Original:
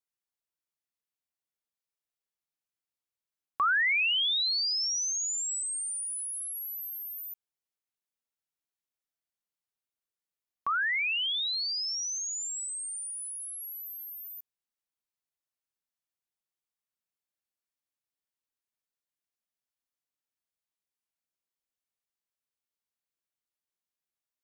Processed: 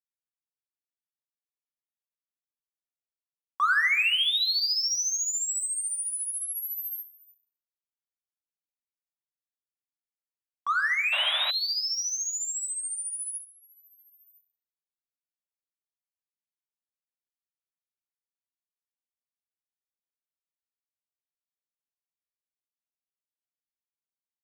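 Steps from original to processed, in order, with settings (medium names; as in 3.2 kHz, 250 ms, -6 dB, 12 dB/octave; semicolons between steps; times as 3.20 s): gate with hold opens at -31 dBFS; in parallel at -8 dB: hard clipper -35 dBFS, distortion -7 dB; on the sum: simulated room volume 3500 m³, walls furnished, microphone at 1.9 m; painted sound noise, 11.12–11.51 s, 550–3900 Hz -32 dBFS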